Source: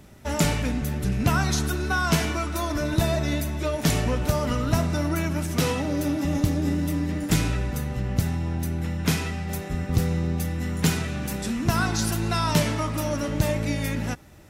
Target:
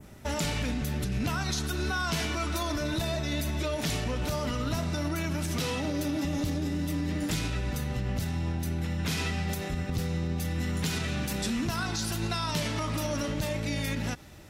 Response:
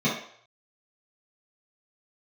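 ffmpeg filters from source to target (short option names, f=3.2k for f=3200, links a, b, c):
-af "alimiter=limit=-22.5dB:level=0:latency=1:release=85,adynamicequalizer=threshold=0.00224:dfrequency=3900:dqfactor=0.95:tfrequency=3900:tqfactor=0.95:attack=5:release=100:ratio=0.375:range=3:mode=boostabove:tftype=bell"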